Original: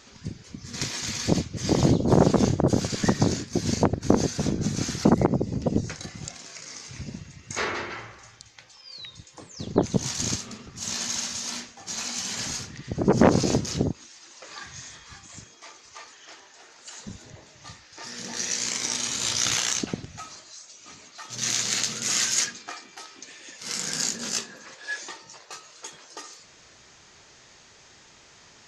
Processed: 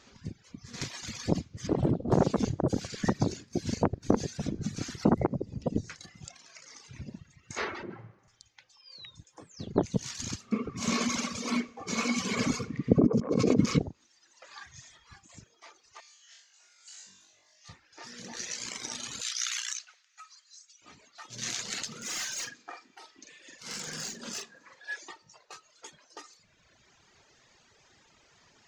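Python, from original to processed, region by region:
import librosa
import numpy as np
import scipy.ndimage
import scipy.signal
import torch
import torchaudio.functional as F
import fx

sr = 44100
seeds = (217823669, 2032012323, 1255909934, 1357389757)

y = fx.chain(x, sr, fx.lowpass(hz=1500.0, slope=6),
    fx.doppler_dist(depth_ms=0.68), at=(1.67, 2.12))
y = fx.chain(y, sr, fx.highpass(hz=140.0, slope=24),
    fx.tilt_eq(slope=-4.5), at=(7.83, 8.28))
y = fx.chain(y, sr, fx.over_compress(threshold_db=-28.0, ratio=-1.0),
    fx.small_body(hz=(250.0, 440.0, 1100.0, 2200.0), ring_ms=25, db=17), at=(10.52, 13.79))
y = fx.chain(y, sr, fx.bandpass_q(hz=7900.0, q=0.58),
    fx.room_flutter(wall_m=3.6, rt60_s=1.0), at=(16.0, 17.69))
y = fx.chain(y, sr, fx.highpass(hz=1300.0, slope=24),
    fx.peak_eq(hz=6200.0, db=2.5, octaves=0.84), at=(19.21, 20.82))
y = fx.chain(y, sr, fx.clip_hard(threshold_db=-22.5),
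    fx.doubler(ms=45.0, db=-4), at=(21.87, 24.83))
y = fx.high_shelf(y, sr, hz=5500.0, db=-7.0)
y = fx.dereverb_blind(y, sr, rt60_s=1.8)
y = F.gain(torch.from_numpy(y), -4.5).numpy()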